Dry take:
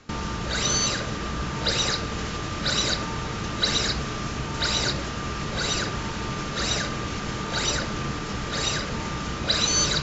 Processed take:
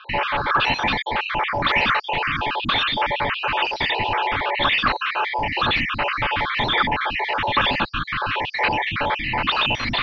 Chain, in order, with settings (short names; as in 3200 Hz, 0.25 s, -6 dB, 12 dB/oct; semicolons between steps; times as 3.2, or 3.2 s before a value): random spectral dropouts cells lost 53%; in parallel at -5 dB: wrapped overs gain 18 dB; on the sum: tilt shelf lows -6.5 dB, about 740 Hz; reverse; upward compressor, threshold -28 dBFS; reverse; HPF 180 Hz; soft clip -18.5 dBFS, distortion -10 dB; mistuned SSB -330 Hz 280–3400 Hz; gain +8.5 dB